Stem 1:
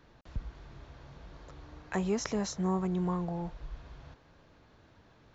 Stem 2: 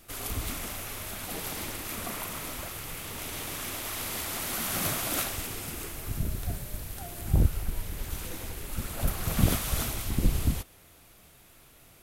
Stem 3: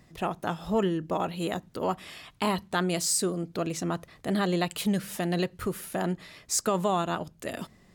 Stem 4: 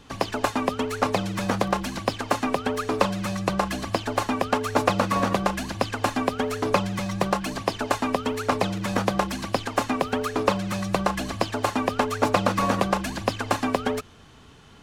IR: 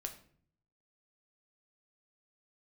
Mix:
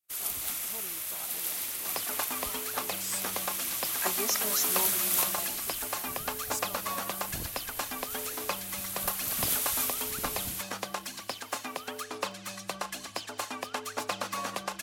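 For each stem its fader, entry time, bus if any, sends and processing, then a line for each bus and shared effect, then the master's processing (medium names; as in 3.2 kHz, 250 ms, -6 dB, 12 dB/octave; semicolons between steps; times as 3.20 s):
-1.5 dB, 2.10 s, no send, reverb removal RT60 2 s; comb 3.1 ms
-7.0 dB, 0.00 s, no send, none
-19.5 dB, 0.00 s, no send, none
-13.5 dB, 1.75 s, send -9 dB, none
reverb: on, RT60 0.55 s, pre-delay 7 ms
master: expander -45 dBFS; tilt EQ +3.5 dB/octave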